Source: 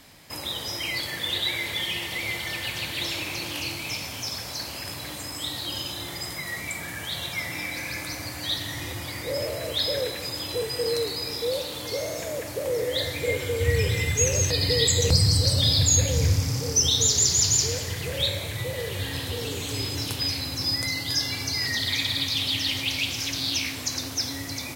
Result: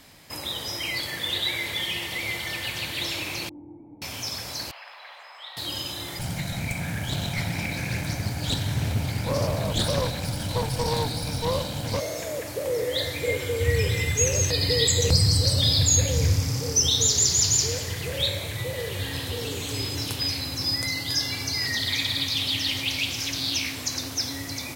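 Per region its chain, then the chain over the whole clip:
0:03.49–0:04.02: linear delta modulator 32 kbit/s, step −46 dBFS + formant resonators in series u
0:04.71–0:05.57: inverse Chebyshev high-pass filter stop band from 270 Hz, stop band 50 dB + high-frequency loss of the air 370 metres
0:06.19–0:12.00: lower of the sound and its delayed copy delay 1.3 ms + parametric band 150 Hz +14.5 dB 3 octaves + highs frequency-modulated by the lows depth 0.3 ms
whole clip: no processing

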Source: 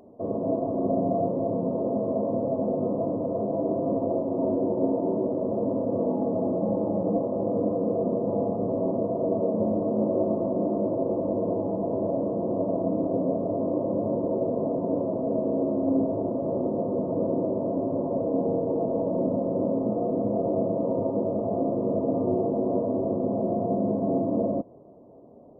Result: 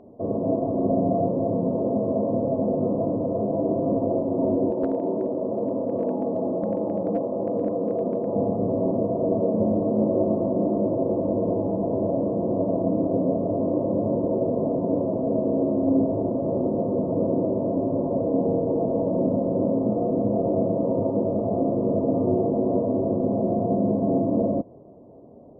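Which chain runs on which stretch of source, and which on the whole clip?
0:04.70–0:08.36: high-pass filter 300 Hz 6 dB per octave + hard clipping −19 dBFS
whole clip: low-pass filter 1,100 Hz 6 dB per octave; parametric band 76 Hz +3.5 dB 2 octaves; level +3 dB

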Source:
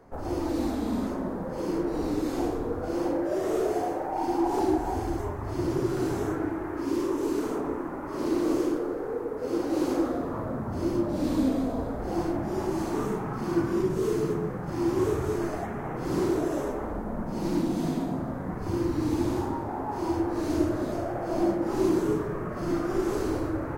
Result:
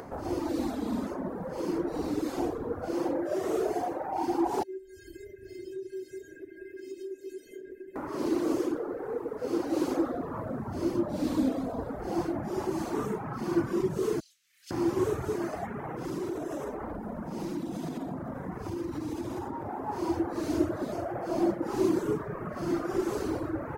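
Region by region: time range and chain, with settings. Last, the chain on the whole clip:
0:04.63–0:07.96: linear-phase brick-wall band-stop 660–1,500 Hz + stiff-string resonator 380 Hz, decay 0.33 s, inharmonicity 0.008
0:14.20–0:14.71: inverse Chebyshev high-pass filter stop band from 940 Hz, stop band 60 dB + high-shelf EQ 11,000 Hz −10 dB
0:15.84–0:19.87: downward compressor 3 to 1, threshold −29 dBFS + notch filter 4,400 Hz, Q 15
whole clip: high-pass filter 95 Hz 6 dB per octave; reverb reduction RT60 0.87 s; upward compression, threshold −34 dBFS

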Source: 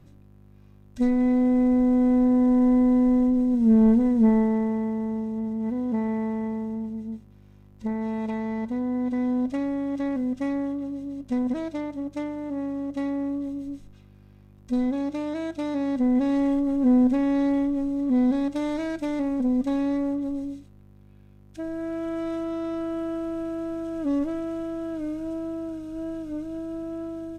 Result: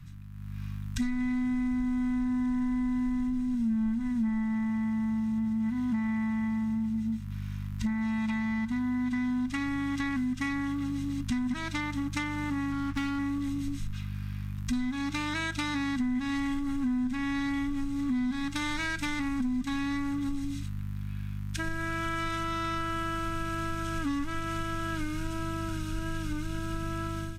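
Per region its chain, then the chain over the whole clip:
0:12.72–0:13.19: phase distortion by the signal itself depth 0.078 ms + slack as between gear wheels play −34.5 dBFS
whole clip: automatic gain control gain up to 11.5 dB; Chebyshev band-stop filter 160–1,400 Hz, order 2; downward compressor 6 to 1, threshold −35 dBFS; level +6.5 dB

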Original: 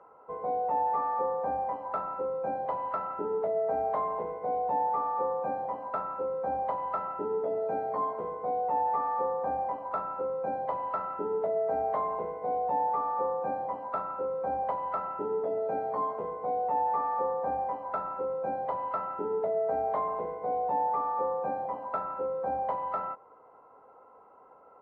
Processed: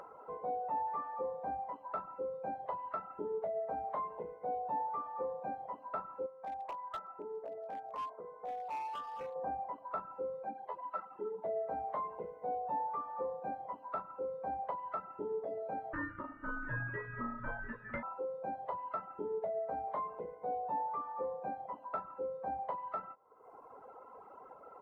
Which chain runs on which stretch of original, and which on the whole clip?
0:06.26–0:09.36: low-pass filter 2,000 Hz + low-shelf EQ 410 Hz −12 dB + hard clipping −29 dBFS
0:10.44–0:11.45: high-pass filter 170 Hz + string-ensemble chorus
0:15.93–0:18.03: bass and treble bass +14 dB, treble −10 dB + ring modulation 760 Hz + single-tap delay 691 ms −12 dB
whole clip: reverb reduction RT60 1.2 s; upward compression, threshold −37 dBFS; level −5.5 dB

